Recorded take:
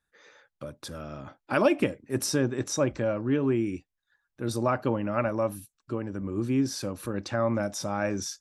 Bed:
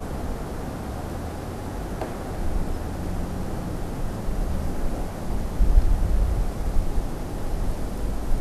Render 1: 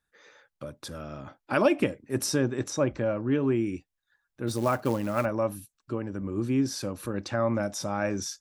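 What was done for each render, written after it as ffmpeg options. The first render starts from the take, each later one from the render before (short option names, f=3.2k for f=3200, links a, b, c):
-filter_complex "[0:a]asettb=1/sr,asplit=3[a][b][c];[a]atrim=end=2.704[d];[b]atrim=start=2.7:end=3.32,asetpts=PTS-STARTPTS,afade=t=in:d=0.004:c=qsin,afade=t=out:st=0.616:d=0.004:c=qsin,highshelf=f=5.5k:g=-9[e];[c]atrim=start=3.316[f];[d][e]acrossfade=d=0.004:c1=hsin:c2=qsin[g];[g][f]acrossfade=d=0.004:c1=qsin:c2=hsin,asplit=3[h][i][j];[h]afade=t=out:st=4.47:d=0.02[k];[i]acrusher=bits=5:mode=log:mix=0:aa=0.000001,afade=t=in:st=4.47:d=0.02,afade=t=out:st=5.24:d=0.02[l];[j]afade=t=in:st=5.24:d=0.02[m];[k][l][m]amix=inputs=3:normalize=0"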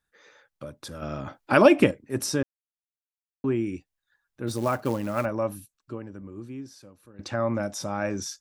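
-filter_complex "[0:a]asplit=6[a][b][c][d][e][f];[a]atrim=end=1.022[g];[b]atrim=start=1.018:end=1.912,asetpts=PTS-STARTPTS,volume=6.5dB[h];[c]atrim=start=1.908:end=2.43,asetpts=PTS-STARTPTS,afade=t=out:st=0.518:d=0.004:c=hsin[i];[d]atrim=start=2.43:end=3.44,asetpts=PTS-STARTPTS,volume=0[j];[e]atrim=start=3.44:end=7.19,asetpts=PTS-STARTPTS,afade=t=in:d=0.004:c=hsin,afade=t=out:st=2.09:d=1.66:c=qua:silence=0.105925[k];[f]atrim=start=7.19,asetpts=PTS-STARTPTS,afade=t=in:d=0.004:c=hsin:silence=0.105925[l];[g][h]acrossfade=d=0.004:c1=hsin:c2=hsin[m];[i][j][k][l]concat=n=4:v=0:a=1[n];[m][n]acrossfade=d=0.004:c1=hsin:c2=hsin"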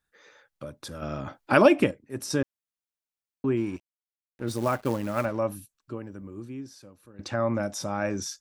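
-filter_complex "[0:a]asplit=3[a][b][c];[a]afade=t=out:st=3.56:d=0.02[d];[b]aeval=exprs='sgn(val(0))*max(abs(val(0))-0.00422,0)':c=same,afade=t=in:st=3.56:d=0.02,afade=t=out:st=5.38:d=0.02[e];[c]afade=t=in:st=5.38:d=0.02[f];[d][e][f]amix=inputs=3:normalize=0,asettb=1/sr,asplit=3[g][h][i];[g]atrim=end=5.964[j];[h]atrim=start=5.96:end=6.45,asetpts=PTS-STARTPTS,afade=t=in:d=0.004:c=qsin,afade=t=out:st=0.486:d=0.004:c=qsin,highshelf=f=8.9k:g=9.5[k];[i]atrim=start=6.446[l];[j][k]acrossfade=d=0.004:c1=hsin:c2=qsin[m];[m][l]acrossfade=d=0.004:c1=qsin:c2=hsin,asplit=2[n][o];[n]atrim=end=2.3,asetpts=PTS-STARTPTS,afade=t=out:st=1.53:d=0.77:c=qua:silence=0.473151[p];[o]atrim=start=2.3,asetpts=PTS-STARTPTS,afade=t=in:d=0.004:c=hsin:silence=0.473151[q];[p][q]concat=n=2:v=0:a=1"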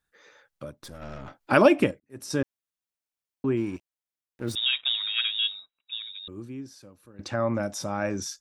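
-filter_complex "[0:a]asettb=1/sr,asplit=3[a][b][c];[a]atrim=end=0.714[d];[b]atrim=start=0.71:end=1.41,asetpts=PTS-STARTPTS,afade=t=in:d=0.004:c=qsin,afade=t=out:st=0.696:d=0.004:c=qsin,aeval=exprs='(tanh(56.2*val(0)+0.75)-tanh(0.75))/56.2':c=same[e];[c]atrim=start=1.406[f];[d][e]acrossfade=d=0.004:c1=hsin:c2=qsin[g];[g][f]acrossfade=d=0.004:c1=qsin:c2=hsin,asettb=1/sr,asplit=3[h][i][j];[h]atrim=end=4.554[k];[i]atrim=start=4.55:end=6.28,asetpts=PTS-STARTPTS,afade=t=in:d=0.004:c=qsin,afade=t=out:st=1.726:d=0.004:c=qsin,lowpass=f=3.3k:t=q:w=0.5098,lowpass=f=3.3k:t=q:w=0.6013,lowpass=f=3.3k:t=q:w=0.9,lowpass=f=3.3k:t=q:w=2.563,afreqshift=-3900[l];[j]atrim=start=6.276[m];[k][l]acrossfade=d=0.004:c1=hsin:c2=qsin[n];[n][m]acrossfade=d=0.004:c1=qsin:c2=hsin,asplit=2[o][p];[o]atrim=end=2,asetpts=PTS-STARTPTS,afade=t=out:st=1.996:d=0.004:c=hsin[q];[p]atrim=start=2,asetpts=PTS-STARTPTS,afade=t=in:d=0.4[r];[q][r]concat=n=2:v=0:a=1"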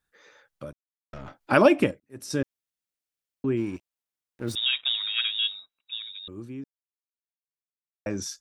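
-filter_complex "[0:a]asettb=1/sr,asplit=3[a][b][c];[a]atrim=end=2.204[d];[b]atrim=start=2.2:end=3.59,asetpts=PTS-STARTPTS,afade=t=in:d=0.004:c=qsin,afade=t=out:st=1.386:d=0.004:c=qsin,equalizer=f=950:w=1.5:g=-5[e];[c]atrim=start=3.586[f];[d][e]acrossfade=d=0.004:c1=hsin:c2=qsin[g];[g][f]acrossfade=d=0.004:c1=qsin:c2=hsin,asplit=5[h][i][j][k][l];[h]atrim=end=0.73,asetpts=PTS-STARTPTS,afade=t=out:st=0.726:d=0.004:c=hsin[m];[i]atrim=start=0.73:end=1.13,asetpts=PTS-STARTPTS,volume=0[n];[j]atrim=start=1.13:end=6.64,asetpts=PTS-STARTPTS,afade=t=in:d=0.004:c=hsin,afade=t=out:st=5.506:d=0.004:c=hsin[o];[k]atrim=start=6.64:end=8.06,asetpts=PTS-STARTPTS,volume=0[p];[l]atrim=start=8.06,asetpts=PTS-STARTPTS,afade=t=in:d=0.004:c=hsin[q];[m][n][o][p][q]concat=n=5:v=0:a=1"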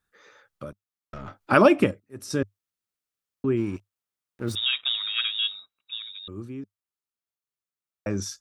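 -af "equalizer=f=100:t=o:w=0.33:g=8,equalizer=f=200:t=o:w=0.33:g=4,equalizer=f=400:t=o:w=0.33:g=3,equalizer=f=1.25k:t=o:w=0.33:g=6"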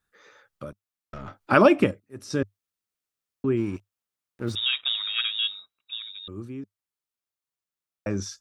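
-filter_complex "[0:a]acrossover=split=6900[a][b];[b]acompressor=threshold=-54dB:ratio=4:attack=1:release=60[c];[a][c]amix=inputs=2:normalize=0"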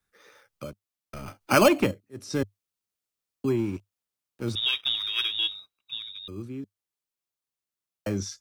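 -filter_complex "[0:a]acrossover=split=130|560|1600[a][b][c][d];[b]asoftclip=type=tanh:threshold=-18.5dB[e];[c]acrusher=samples=12:mix=1:aa=0.000001[f];[a][e][f][d]amix=inputs=4:normalize=0"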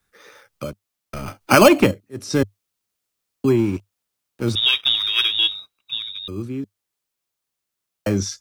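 -af "volume=8.5dB,alimiter=limit=-1dB:level=0:latency=1"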